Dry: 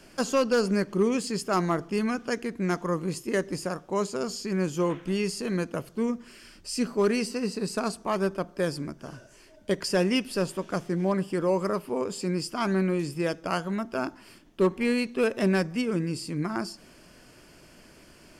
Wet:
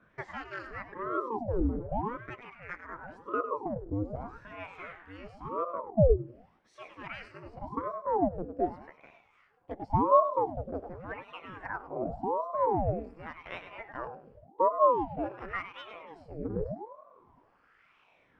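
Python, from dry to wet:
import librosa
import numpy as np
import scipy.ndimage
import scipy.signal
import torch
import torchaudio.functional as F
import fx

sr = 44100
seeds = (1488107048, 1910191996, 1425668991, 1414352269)

p1 = fx.lower_of_two(x, sr, delay_ms=1.1, at=(4.15, 5.01))
p2 = fx.bass_treble(p1, sr, bass_db=13, treble_db=-9)
p3 = p2 + fx.echo_feedback(p2, sr, ms=102, feedback_pct=42, wet_db=-10, dry=0)
p4 = fx.wah_lfo(p3, sr, hz=0.46, low_hz=220.0, high_hz=1900.0, q=5.0)
p5 = fx.ring_lfo(p4, sr, carrier_hz=480.0, swing_pct=80, hz=0.88)
y = p5 * librosa.db_to_amplitude(3.5)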